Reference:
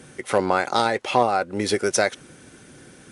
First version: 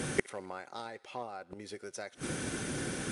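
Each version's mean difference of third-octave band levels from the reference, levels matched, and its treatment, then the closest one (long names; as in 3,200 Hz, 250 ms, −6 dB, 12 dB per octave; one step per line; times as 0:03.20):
12.0 dB: gate with flip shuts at −22 dBFS, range −32 dB
feedback echo with a high-pass in the loop 64 ms, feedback 76%, high-pass 680 Hz, level −24 dB
level +10 dB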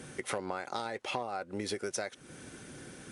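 6.0 dB: downward compressor 6 to 1, threshold −32 dBFS, peak gain reduction 18 dB
level −1.5 dB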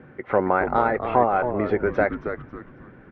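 8.5 dB: low-pass filter 1,900 Hz 24 dB per octave
on a send: echo with shifted repeats 273 ms, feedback 33%, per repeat −130 Hz, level −8 dB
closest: second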